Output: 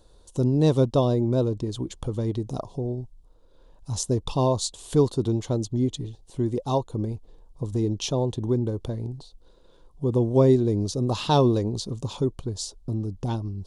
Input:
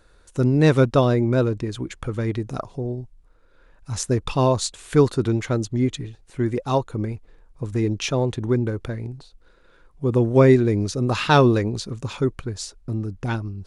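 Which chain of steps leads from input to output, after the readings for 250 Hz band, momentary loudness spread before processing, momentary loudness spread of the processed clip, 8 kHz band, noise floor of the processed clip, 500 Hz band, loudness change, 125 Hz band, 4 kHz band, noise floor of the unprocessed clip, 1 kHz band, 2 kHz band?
−3.0 dB, 15 LU, 13 LU, −1.5 dB, −55 dBFS, −3.5 dB, −3.5 dB, −3.0 dB, −2.5 dB, −55 dBFS, −5.0 dB, −16.0 dB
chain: flat-topped bell 1,800 Hz −15 dB 1.2 octaves
in parallel at −0.5 dB: downward compressor, threshold −29 dBFS, peak gain reduction 18 dB
on the sum: level −5 dB

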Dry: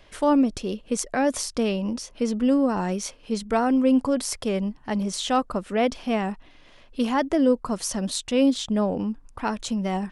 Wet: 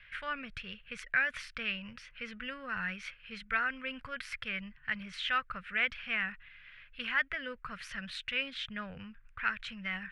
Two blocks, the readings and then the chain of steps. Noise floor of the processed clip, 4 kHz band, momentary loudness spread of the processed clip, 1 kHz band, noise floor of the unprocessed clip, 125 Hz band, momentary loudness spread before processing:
−59 dBFS, −6.0 dB, 13 LU, −12.5 dB, −52 dBFS, −17.5 dB, 9 LU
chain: drawn EQ curve 150 Hz 0 dB, 320 Hz −27 dB, 470 Hz −14 dB, 880 Hz −15 dB, 1,500 Hz +14 dB, 2,400 Hz +14 dB, 6,700 Hz −18 dB
level −9 dB

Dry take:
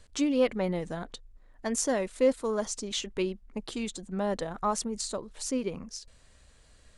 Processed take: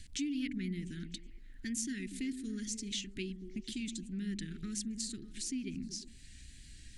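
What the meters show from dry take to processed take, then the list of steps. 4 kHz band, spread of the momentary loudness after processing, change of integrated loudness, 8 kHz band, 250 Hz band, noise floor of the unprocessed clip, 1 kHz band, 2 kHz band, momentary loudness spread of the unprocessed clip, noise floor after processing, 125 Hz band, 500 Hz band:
−4.5 dB, 14 LU, −8.5 dB, −5.5 dB, −5.5 dB, −59 dBFS, below −30 dB, −7.0 dB, 13 LU, −54 dBFS, −3.5 dB, −23.0 dB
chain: inverse Chebyshev band-stop filter 530–1,100 Hz, stop band 50 dB
downward compressor 2 to 1, threshold −53 dBFS, peak gain reduction 15.5 dB
on a send: echo through a band-pass that steps 119 ms, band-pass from 200 Hz, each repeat 0.7 octaves, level −6.5 dB
on the sum: tape wow and flutter 23 cents
background noise brown −80 dBFS
level +6.5 dB

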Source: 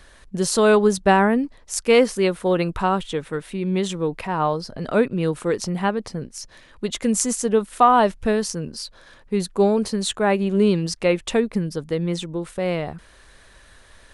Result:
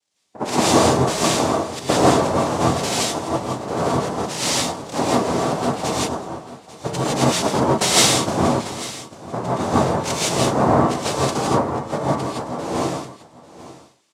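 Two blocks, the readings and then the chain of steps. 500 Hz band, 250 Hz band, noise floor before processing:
−0.5 dB, +0.5 dB, −50 dBFS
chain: adaptive Wiener filter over 9 samples
high-pass filter 190 Hz 24 dB per octave
downward compressor 6 to 1, threshold −18 dBFS, peak gain reduction 9 dB
cochlear-implant simulation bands 2
on a send: single-tap delay 845 ms −10 dB
on the sum: reverb whose tail is shaped and stops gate 190 ms rising, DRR −4.5 dB
multiband upward and downward expander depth 70%
level −1 dB

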